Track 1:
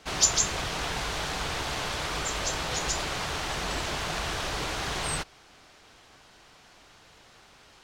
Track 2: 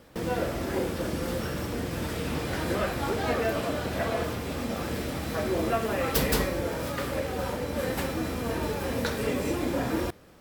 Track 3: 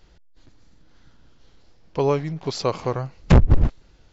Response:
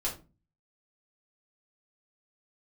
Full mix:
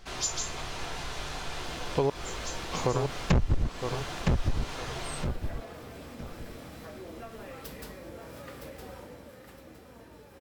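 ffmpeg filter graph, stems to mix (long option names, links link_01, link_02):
-filter_complex "[0:a]volume=-9dB,asplit=2[link_01][link_02];[link_02]volume=-4.5dB[link_03];[1:a]adelay=1500,volume=-9dB,afade=type=out:start_time=8.94:duration=0.39:silence=0.223872,asplit=2[link_04][link_05];[link_05]volume=-16dB[link_06];[2:a]volume=1dB,asplit=3[link_07][link_08][link_09];[link_07]atrim=end=2.1,asetpts=PTS-STARTPTS,afade=type=out:start_time=2.096:duration=0.004:curve=hsin[link_10];[link_08]atrim=start=2.1:end=2.72,asetpts=PTS-STARTPTS,volume=0[link_11];[link_09]atrim=start=2.72,asetpts=PTS-STARTPTS,afade=type=in:duration=0.004:curve=hsin[link_12];[link_10][link_11][link_12]concat=n=3:v=0:a=1,asplit=2[link_13][link_14];[link_14]volume=-9dB[link_15];[link_01][link_04]amix=inputs=2:normalize=0,acompressor=threshold=-43dB:ratio=3,volume=0dB[link_16];[3:a]atrim=start_sample=2205[link_17];[link_03][link_17]afir=irnorm=-1:irlink=0[link_18];[link_06][link_15]amix=inputs=2:normalize=0,aecho=0:1:962|1924|2886|3848:1|0.27|0.0729|0.0197[link_19];[link_13][link_16][link_18][link_19]amix=inputs=4:normalize=0,acompressor=threshold=-23dB:ratio=5"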